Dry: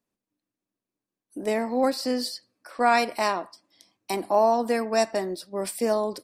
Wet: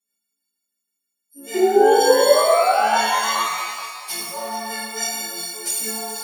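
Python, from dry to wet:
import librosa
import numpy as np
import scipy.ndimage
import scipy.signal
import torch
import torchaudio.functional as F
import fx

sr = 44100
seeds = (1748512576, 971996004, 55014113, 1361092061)

y = fx.freq_snap(x, sr, grid_st=4)
y = fx.tilt_shelf(y, sr, db=-6.5, hz=1100.0)
y = fx.spec_paint(y, sr, seeds[0], shape='rise', start_s=1.54, length_s=1.96, low_hz=360.0, high_hz=1300.0, level_db=-13.0)
y = fx.rotary(y, sr, hz=6.3)
y = fx.env_flanger(y, sr, rest_ms=4.9, full_db=-16.5)
y = fx.echo_thinned(y, sr, ms=428, feedback_pct=43, hz=560.0, wet_db=-12.5)
y = fx.rev_shimmer(y, sr, seeds[1], rt60_s=1.3, semitones=12, shimmer_db=-8, drr_db=-7.5)
y = F.gain(torch.from_numpy(y), -7.5).numpy()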